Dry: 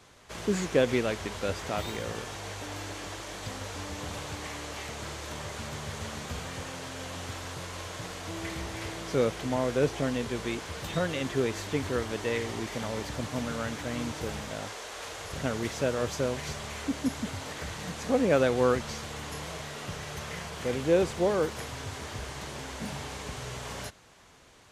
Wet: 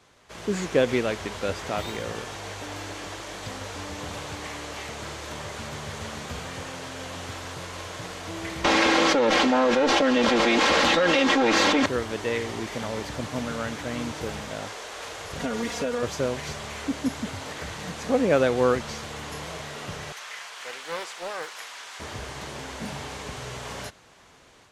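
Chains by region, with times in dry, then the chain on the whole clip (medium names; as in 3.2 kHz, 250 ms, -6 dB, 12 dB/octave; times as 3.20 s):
8.64–11.86 s: comb filter that takes the minimum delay 3.7 ms + three-band isolator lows -15 dB, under 210 Hz, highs -21 dB, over 6.3 kHz + level flattener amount 100%
15.39–16.03 s: comb 4.2 ms, depth 89% + compression, threshold -26 dBFS
20.12–22.00 s: high-pass 1.1 kHz + loudspeaker Doppler distortion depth 0.29 ms
whole clip: treble shelf 7.8 kHz -5 dB; level rider gain up to 5 dB; bass shelf 140 Hz -4.5 dB; trim -1.5 dB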